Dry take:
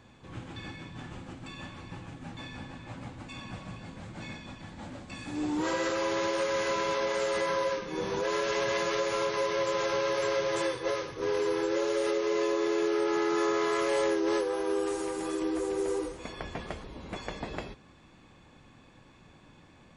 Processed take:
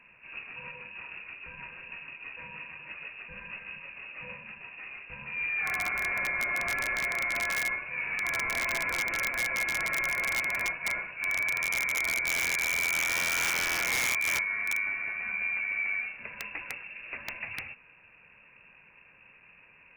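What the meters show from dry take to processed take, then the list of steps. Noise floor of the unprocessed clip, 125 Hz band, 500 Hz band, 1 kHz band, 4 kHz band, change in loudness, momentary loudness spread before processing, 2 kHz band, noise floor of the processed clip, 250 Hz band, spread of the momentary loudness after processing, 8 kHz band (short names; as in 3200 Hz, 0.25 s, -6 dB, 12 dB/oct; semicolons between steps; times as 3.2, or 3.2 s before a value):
-57 dBFS, -7.5 dB, -17.5 dB, -5.0 dB, 0.0 dB, +1.5 dB, 16 LU, +10.0 dB, -57 dBFS, -17.0 dB, 15 LU, +5.5 dB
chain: bit-crush 10-bit; inverted band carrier 2700 Hz; wrapped overs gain 21 dB; gain -1 dB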